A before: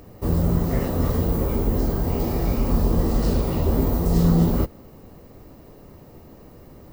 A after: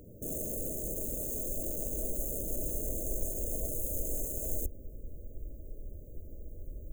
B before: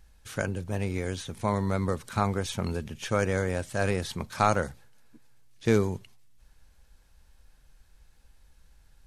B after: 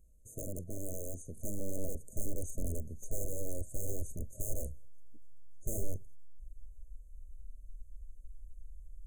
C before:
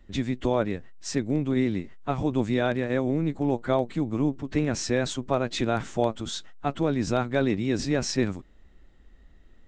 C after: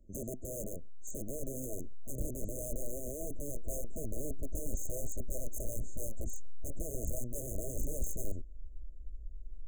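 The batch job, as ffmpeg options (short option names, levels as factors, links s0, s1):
-af "aeval=exprs='(mod(15*val(0)+1,2)-1)/15':c=same,asubboost=boost=10.5:cutoff=51,afftfilt=real='re*(1-between(b*sr/4096,660,6200))':imag='im*(1-between(b*sr/4096,660,6200))':win_size=4096:overlap=0.75,volume=0.473"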